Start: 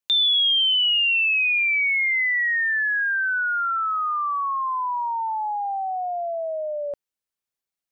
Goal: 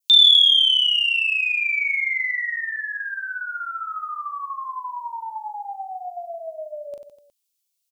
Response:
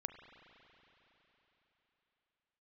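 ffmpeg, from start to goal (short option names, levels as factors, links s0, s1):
-af "aecho=1:1:40|92|159.6|247.5|361.7:0.631|0.398|0.251|0.158|0.1,aexciter=amount=7.7:drive=2.2:freq=2500,adynamicequalizer=threshold=0.141:dfrequency=2900:dqfactor=1.8:tfrequency=2900:tqfactor=1.8:attack=5:release=100:ratio=0.375:range=4:mode=cutabove:tftype=bell,volume=0.398"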